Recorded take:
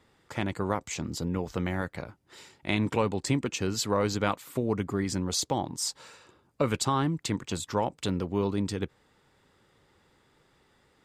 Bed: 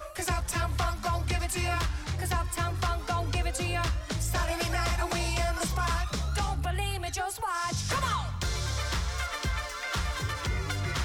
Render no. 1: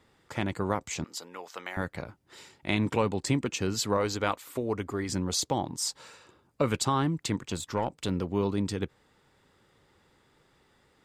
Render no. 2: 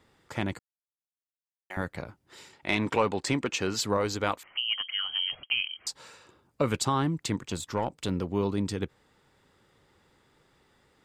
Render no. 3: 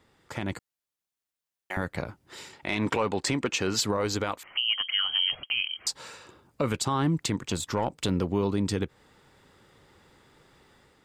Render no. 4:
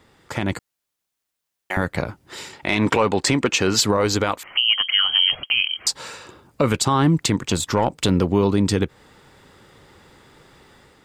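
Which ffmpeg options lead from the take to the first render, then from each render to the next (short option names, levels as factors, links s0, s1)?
-filter_complex "[0:a]asettb=1/sr,asplit=3[s0][s1][s2];[s0]atrim=end=1.044[s3];[s1]atrim=start=1.04:end=1.77,asetpts=PTS-STARTPTS,afade=t=in:d=0.004:c=qsin,afade=t=out:st=0.726:d=0.004:c=qsin,highpass=780[s4];[s2]atrim=start=1.766[s5];[s3][s4]acrossfade=d=0.004:c1=hsin:c2=qsin[s6];[s6][s5]acrossfade=d=0.004:c1=qsin:c2=hsin,asettb=1/sr,asplit=3[s7][s8][s9];[s7]atrim=end=3.974[s10];[s8]atrim=start=3.97:end=5.09,asetpts=PTS-STARTPTS,afade=t=in:d=0.004:c=qsin,afade=t=out:st=1.116:d=0.004:c=qsin,equalizer=f=160:w=1.5:g=-10.5[s11];[s9]atrim=start=5.086[s12];[s10][s11]acrossfade=d=0.004:c1=hsin:c2=qsin[s13];[s13][s12]acrossfade=d=0.004:c1=qsin:c2=hsin,asettb=1/sr,asplit=3[s14][s15][s16];[s14]atrim=end=7.374[s17];[s15]atrim=start=7.37:end=8.11,asetpts=PTS-STARTPTS,afade=t=in:d=0.004:c=qsin,afade=t=out:st=0.736:d=0.004:c=qsin,aeval=exprs='(tanh(8.91*val(0)+0.4)-tanh(0.4))/8.91':c=same[s18];[s16]atrim=start=8.106[s19];[s17][s18]acrossfade=d=0.004:c1=hsin:c2=qsin[s20];[s20][s19]acrossfade=d=0.004:c1=qsin:c2=hsin"
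-filter_complex "[0:a]asettb=1/sr,asplit=3[s0][s1][s2];[s0]atrim=end=2.534[s3];[s1]atrim=start=2.53:end=3.81,asetpts=PTS-STARTPTS,afade=t=in:d=0.004:c=qsin,afade=t=out:st=1.276:d=0.004:c=qsin,asplit=2[s4][s5];[s5]highpass=f=720:p=1,volume=3.55,asoftclip=type=tanh:threshold=0.282[s6];[s4][s6]amix=inputs=2:normalize=0,lowpass=f=3500:p=1,volume=0.501[s7];[s2]atrim=start=3.806[s8];[s3][s7]acrossfade=d=0.004:c1=hsin:c2=qsin[s9];[s9][s8]acrossfade=d=0.004:c1=qsin:c2=hsin,asettb=1/sr,asplit=3[s10][s11][s12];[s10]atrim=end=4.434[s13];[s11]atrim=start=4.43:end=5.87,asetpts=PTS-STARTPTS,afade=t=in:d=0.004:c=qsin,afade=t=out:st=1.436:d=0.004:c=qsin,lowpass=f=2800:t=q:w=0.5098,lowpass=f=2800:t=q:w=0.6013,lowpass=f=2800:t=q:w=0.9,lowpass=f=2800:t=q:w=2.563,afreqshift=-3300[s14];[s12]atrim=start=5.866[s15];[s13][s14]acrossfade=d=0.004:c1=hsin:c2=qsin[s16];[s16][s15]acrossfade=d=0.004:c1=qsin:c2=hsin,asplit=3[s17][s18][s19];[s17]atrim=end=0.59,asetpts=PTS-STARTPTS,afade=t=out:st=0.586:d=0.004:c=hsin[s20];[s18]atrim=start=0.59:end=1.7,asetpts=PTS-STARTPTS,volume=0[s21];[s19]atrim=start=1.7,asetpts=PTS-STARTPTS,afade=t=in:d=0.004:c=hsin[s22];[s20][s21][s22]concat=n=3:v=0:a=1"
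-af "alimiter=limit=0.0794:level=0:latency=1:release=202,dynaudnorm=f=160:g=5:m=2"
-af "volume=2.66"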